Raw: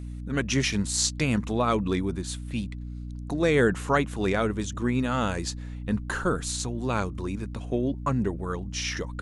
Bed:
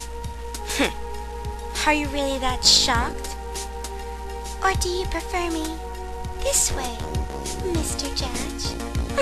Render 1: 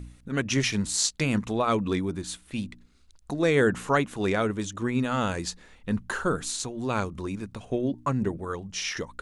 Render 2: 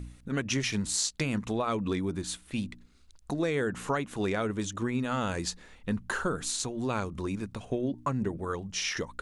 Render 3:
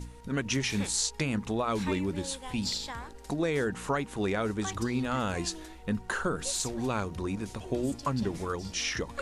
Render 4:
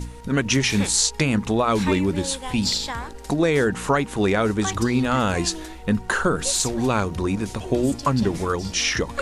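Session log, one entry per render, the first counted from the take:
de-hum 60 Hz, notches 5
compressor 5:1, threshold -26 dBFS, peak gain reduction 8.5 dB
add bed -18.5 dB
gain +9.5 dB

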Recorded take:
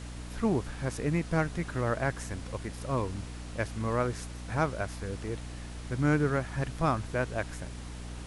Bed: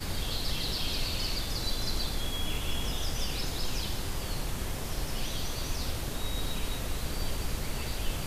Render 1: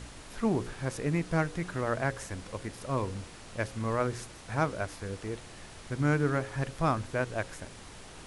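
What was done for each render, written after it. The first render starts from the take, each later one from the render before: de-hum 60 Hz, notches 9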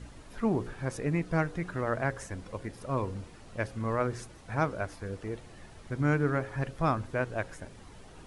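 denoiser 9 dB, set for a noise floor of -48 dBFS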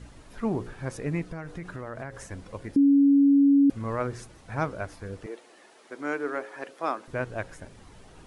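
1.25–2.22 compressor 8:1, threshold -32 dBFS; 2.76–3.7 bleep 280 Hz -15 dBFS; 5.26–7.08 HPF 310 Hz 24 dB/oct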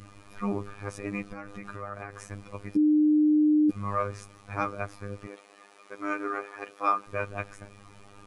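small resonant body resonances 1200/2400 Hz, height 14 dB, ringing for 45 ms; robotiser 101 Hz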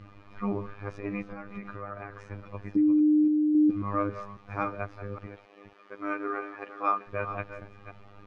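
reverse delay 0.273 s, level -11 dB; air absorption 240 m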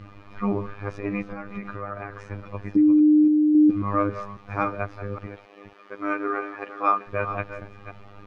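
gain +5.5 dB

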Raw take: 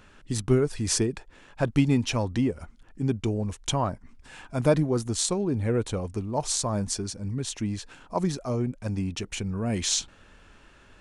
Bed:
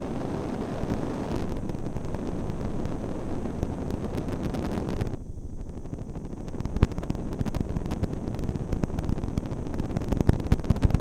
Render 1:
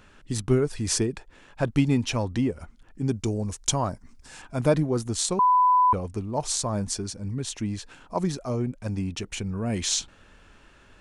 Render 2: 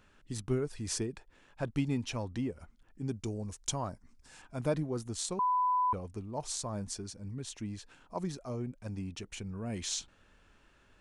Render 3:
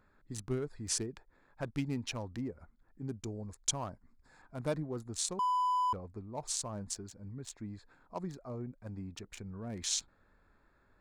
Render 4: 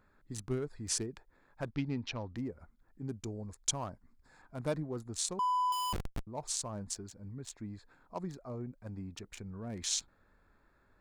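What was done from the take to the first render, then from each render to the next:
3.08–4.42 resonant high shelf 4000 Hz +6.5 dB, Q 1.5; 5.39–5.93 bleep 999 Hz -15.5 dBFS
gain -10 dB
Wiener smoothing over 15 samples; tilt shelf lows -4 dB, about 1400 Hz
1.7–2.36 LPF 5100 Hz 24 dB/oct; 5.72–6.27 Schmitt trigger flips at -37.5 dBFS

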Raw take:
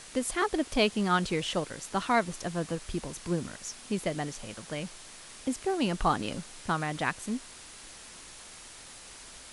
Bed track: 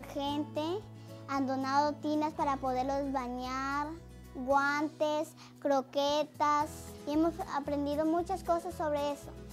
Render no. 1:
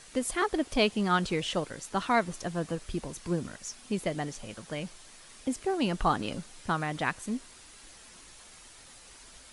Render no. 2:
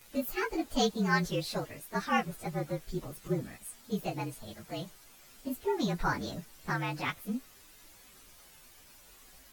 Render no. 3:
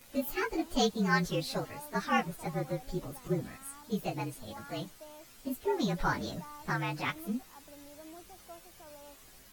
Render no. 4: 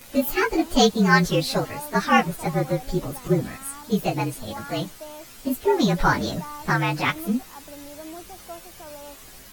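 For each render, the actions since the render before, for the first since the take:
denoiser 6 dB, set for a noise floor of -49 dBFS
inharmonic rescaling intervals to 113%
add bed track -20 dB
gain +11 dB

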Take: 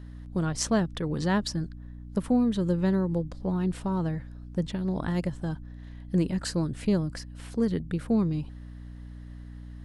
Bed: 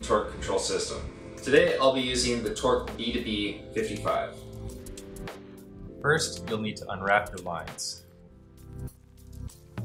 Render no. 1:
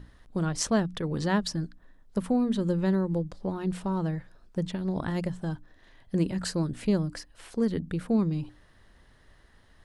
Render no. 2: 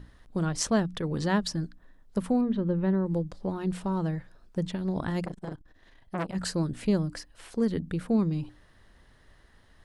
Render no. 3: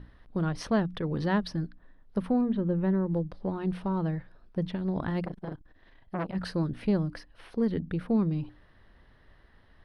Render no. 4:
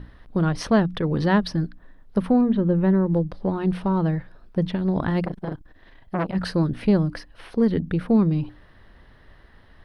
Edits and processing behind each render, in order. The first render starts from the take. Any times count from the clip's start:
notches 60/120/180/240/300 Hz
2.41–3.06 air absorption 380 m; 5.25–6.35 core saturation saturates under 1200 Hz
soft clip -14.5 dBFS, distortion -26 dB; running mean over 6 samples
gain +7.5 dB

